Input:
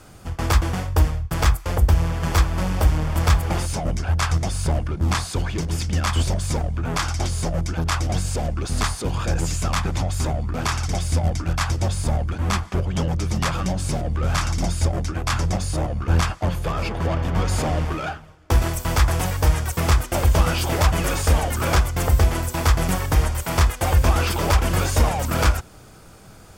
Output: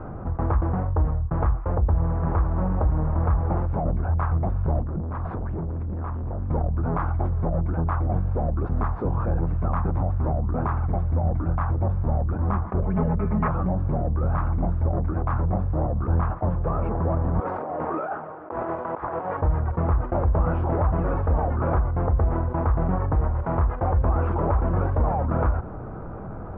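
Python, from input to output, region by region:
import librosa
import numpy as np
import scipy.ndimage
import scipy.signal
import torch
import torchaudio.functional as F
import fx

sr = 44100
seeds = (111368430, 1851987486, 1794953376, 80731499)

y = fx.chain(x, sr, fx.air_absorb(metres=240.0),
    fx.clip_hard(threshold_db=-26.0),
    fx.over_compress(threshold_db=-33.0, ratio=-1.0), at=(4.83, 6.5))
y = fx.chain(y, sr, fx.lowpass_res(hz=2300.0, q=2.9),
    fx.comb(ms=4.7, depth=0.95), at=(12.82, 13.48))
y = fx.chain(y, sr, fx.highpass(hz=380.0, slope=12),
    fx.over_compress(threshold_db=-31.0, ratio=-0.5), at=(17.4, 19.42))
y = scipy.signal.sosfilt(scipy.signal.butter(4, 1200.0, 'lowpass', fs=sr, output='sos'), y)
y = fx.env_flatten(y, sr, amount_pct=50)
y = F.gain(torch.from_numpy(y), -6.0).numpy()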